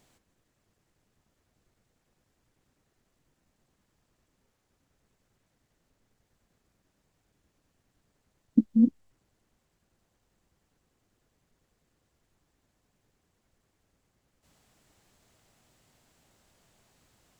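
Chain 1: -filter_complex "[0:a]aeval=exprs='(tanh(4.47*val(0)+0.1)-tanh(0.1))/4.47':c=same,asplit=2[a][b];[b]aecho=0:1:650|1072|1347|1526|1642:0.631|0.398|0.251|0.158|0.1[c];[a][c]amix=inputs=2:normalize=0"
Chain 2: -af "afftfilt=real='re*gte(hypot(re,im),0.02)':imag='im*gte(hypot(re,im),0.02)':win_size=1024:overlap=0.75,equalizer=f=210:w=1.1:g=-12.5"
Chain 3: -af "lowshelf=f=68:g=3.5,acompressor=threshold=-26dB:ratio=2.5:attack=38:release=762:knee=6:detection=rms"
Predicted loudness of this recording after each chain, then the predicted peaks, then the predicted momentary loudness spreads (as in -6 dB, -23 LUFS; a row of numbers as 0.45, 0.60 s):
-30.0, -37.0, -31.0 LUFS; -13.0, -18.0, -14.0 dBFS; 13, 4, 4 LU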